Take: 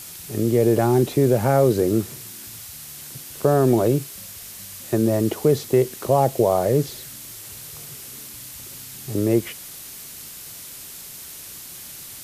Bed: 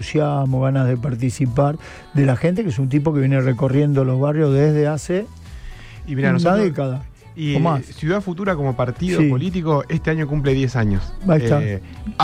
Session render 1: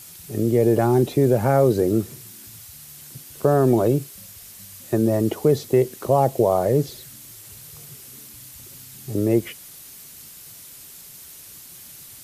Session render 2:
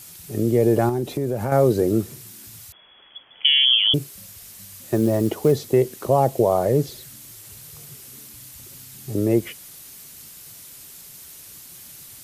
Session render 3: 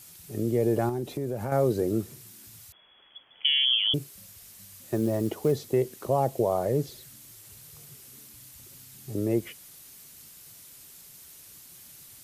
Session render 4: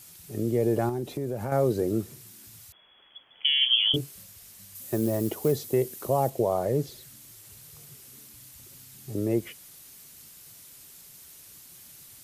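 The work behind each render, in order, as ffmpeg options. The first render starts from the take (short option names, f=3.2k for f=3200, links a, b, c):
-af "afftdn=nr=6:nf=-39"
-filter_complex "[0:a]asettb=1/sr,asplit=3[a][b][c];[a]atrim=end=0.894[d];[b]atrim=start=0.89:end=1.52,asetpts=PTS-STARTPTS,afade=t=in:d=0.004:c=qsin,afade=t=out:st=0.626:d=0.004:c=qsin,acompressor=threshold=-23dB:ratio=2.5:attack=3.2:release=140:knee=1:detection=peak[e];[c]atrim=start=1.516[f];[d][e]acrossfade=d=0.004:c1=hsin:c2=qsin[g];[g][f]acrossfade=d=0.004:c1=qsin:c2=hsin,asettb=1/sr,asplit=3[h][i][j];[h]atrim=end=2.724[k];[i]atrim=start=2.72:end=3.94,asetpts=PTS-STARTPTS,afade=t=in:d=0.004:c=qsin,afade=t=out:st=1.216:d=0.004:c=qsin,lowpass=f=3k:t=q:w=0.5098,lowpass=f=3k:t=q:w=0.6013,lowpass=f=3k:t=q:w=0.9,lowpass=f=3k:t=q:w=2.563,afreqshift=-3500[l];[j]atrim=start=3.936[m];[k][l]acrossfade=d=0.004:c1=hsin:c2=qsin[n];[n][m]acrossfade=d=0.004:c1=qsin:c2=hsin,asplit=3[o][p][q];[o]afade=t=out:st=4.68:d=0.02[r];[p]acrusher=bits=7:mode=log:mix=0:aa=0.000001,afade=t=in:st=4.68:d=0.02,afade=t=out:st=5.51:d=0.02[s];[q]afade=t=in:st=5.51:d=0.02[t];[r][s][t]amix=inputs=3:normalize=0"
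-af "volume=-7dB"
-filter_complex "[0:a]asettb=1/sr,asplit=3[a][b][c];[a]atrim=end=3.594[d];[b]atrim=start=3.59:end=4.23,asetpts=PTS-STARTPTS,afade=t=in:d=0.004:c=qsin,afade=t=out:st=0.636:d=0.004:c=qsin,asplit=2[e][f];[f]adelay=23,volume=-3dB[g];[e][g]amix=inputs=2:normalize=0,atrim=end_sample=28224[h];[c]atrim=start=4.226[i];[d][h]acrossfade=d=0.004:c1=hsin:c2=qsin[j];[j][i]acrossfade=d=0.004:c1=qsin:c2=hsin,asettb=1/sr,asplit=3[k][l][m];[k]atrim=end=4.754[n];[l]atrim=start=4.75:end=6.3,asetpts=PTS-STARTPTS,afade=t=in:d=0.004:c=qsin,afade=t=out:st=1.546:d=0.004:c=qsin,highshelf=f=8.7k:g=10.5[o];[m]atrim=start=6.296[p];[n][o]acrossfade=d=0.004:c1=hsin:c2=qsin[q];[q][p]acrossfade=d=0.004:c1=qsin:c2=hsin"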